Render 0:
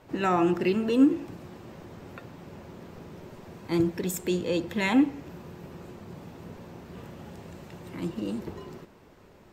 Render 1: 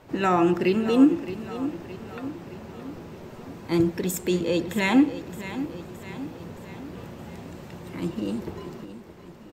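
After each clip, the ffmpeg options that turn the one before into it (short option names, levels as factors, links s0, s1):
-af "aecho=1:1:618|1236|1854|2472|3090:0.224|0.119|0.0629|0.0333|0.0177,volume=1.41"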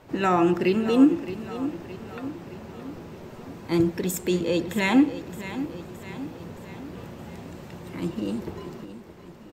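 -af anull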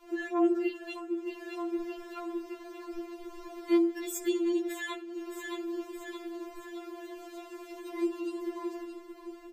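-af "acompressor=threshold=0.0398:ratio=10,afftfilt=real='re*4*eq(mod(b,16),0)':imag='im*4*eq(mod(b,16),0)':win_size=2048:overlap=0.75"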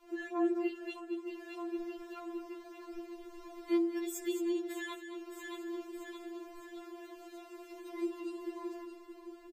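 -af "aecho=1:1:218:0.316,volume=0.531"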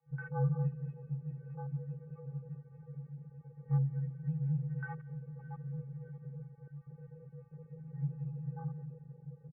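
-af "aecho=1:1:176|352|528|704:0.282|0.116|0.0474|0.0194,afwtdn=0.00708,highpass=f=160:t=q:w=0.5412,highpass=f=160:t=q:w=1.307,lowpass=f=2000:t=q:w=0.5176,lowpass=f=2000:t=q:w=0.7071,lowpass=f=2000:t=q:w=1.932,afreqshift=-200"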